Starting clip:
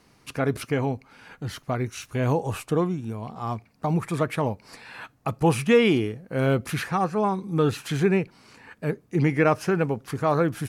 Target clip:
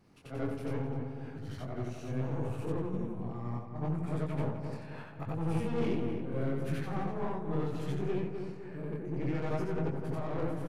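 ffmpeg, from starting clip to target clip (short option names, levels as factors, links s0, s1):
-filter_complex "[0:a]afftfilt=real='re':imag='-im':win_size=8192:overlap=0.75,highshelf=f=4700:g=-4,asplit=2[s0][s1];[s1]acompressor=threshold=0.01:ratio=4,volume=0.794[s2];[s0][s2]amix=inputs=2:normalize=0,aeval=exprs='(tanh(20*val(0)+0.45)-tanh(0.45))/20':c=same,areverse,acompressor=mode=upward:threshold=0.00891:ratio=2.5,areverse,tremolo=f=3.5:d=0.36,flanger=delay=18.5:depth=6.8:speed=0.71,tiltshelf=f=830:g=4.5,asplit=2[s3][s4];[s4]adelay=255,lowpass=f=2000:p=1,volume=0.501,asplit=2[s5][s6];[s6]adelay=255,lowpass=f=2000:p=1,volume=0.48,asplit=2[s7][s8];[s8]adelay=255,lowpass=f=2000:p=1,volume=0.48,asplit=2[s9][s10];[s10]adelay=255,lowpass=f=2000:p=1,volume=0.48,asplit=2[s11][s12];[s12]adelay=255,lowpass=f=2000:p=1,volume=0.48,asplit=2[s13][s14];[s14]adelay=255,lowpass=f=2000:p=1,volume=0.48[s15];[s3][s5][s7][s9][s11][s13][s15]amix=inputs=7:normalize=0,volume=0.75"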